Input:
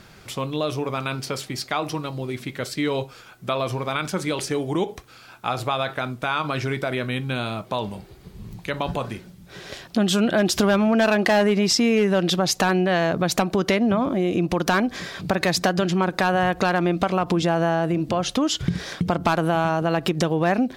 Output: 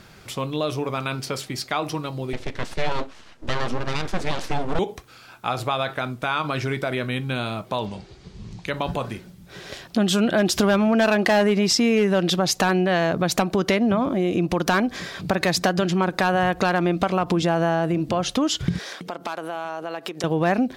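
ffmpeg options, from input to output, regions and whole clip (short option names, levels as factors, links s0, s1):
-filter_complex "[0:a]asettb=1/sr,asplit=3[s0][s1][s2];[s0]atrim=end=2.334[s3];[s1]atrim=start=2.33:end=4.79,asetpts=PTS-STARTPTS,afade=t=in:d=0.004:c=qsin,afade=t=out:st=2.456:d=0.004:c=qsin,lowshelf=f=360:g=6.5,aeval=exprs='abs(val(0))':c=same,lowpass=6800[s4];[s2]atrim=start=4.786[s5];[s3][s4]acrossfade=d=0.004:c1=hsin:c2=qsin[s6];[s6][s5]acrossfade=d=0.004:c1=qsin:c2=hsin,asettb=1/sr,asplit=3[s7][s8][s9];[s7]atrim=end=7.864[s10];[s8]atrim=start=7.86:end=8.66,asetpts=PTS-STARTPTS,afade=t=in:d=0.004:c=qsin,afade=t=out:st=0.796:d=0.004:c=qsin,lowpass=f=6400:w=0.5412,lowpass=f=6400:w=1.3066,highshelf=f=4300:g=10[s11];[s9]atrim=start=8.656[s12];[s10][s11]acrossfade=d=0.004:c1=hsin:c2=qsin[s13];[s13][s12]acrossfade=d=0.004:c1=qsin:c2=hsin,asettb=1/sr,asplit=3[s14][s15][s16];[s14]atrim=end=18.794[s17];[s15]atrim=start=18.79:end=20.24,asetpts=PTS-STARTPTS,afade=t=in:d=0.004:c=qsin,afade=t=out:st=1.446:d=0.004:c=qsin,highpass=380,acompressor=threshold=0.0282:ratio=2:attack=3.2:release=140:knee=1:detection=peak[s18];[s16]atrim=start=20.236[s19];[s17][s18]acrossfade=d=0.004:c1=hsin:c2=qsin[s20];[s20][s19]acrossfade=d=0.004:c1=qsin:c2=hsin"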